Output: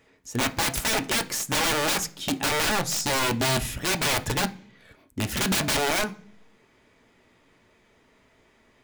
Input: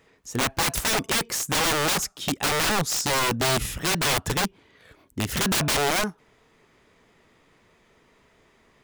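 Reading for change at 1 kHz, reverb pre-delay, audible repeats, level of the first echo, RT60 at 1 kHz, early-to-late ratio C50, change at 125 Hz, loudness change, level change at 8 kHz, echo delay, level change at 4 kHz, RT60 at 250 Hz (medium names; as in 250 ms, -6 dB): -1.5 dB, 3 ms, no echo, no echo, 0.40 s, 18.5 dB, -1.5 dB, -1.0 dB, -1.5 dB, no echo, -1.0 dB, 0.80 s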